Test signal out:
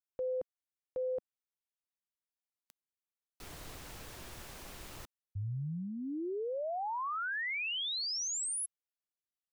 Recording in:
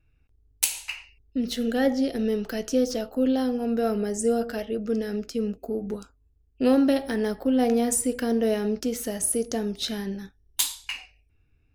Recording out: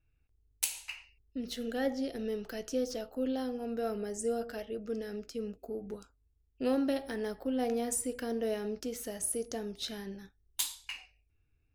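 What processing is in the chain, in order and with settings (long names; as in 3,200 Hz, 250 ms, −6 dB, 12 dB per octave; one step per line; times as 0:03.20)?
parametric band 220 Hz −4 dB 0.62 octaves
level −8.5 dB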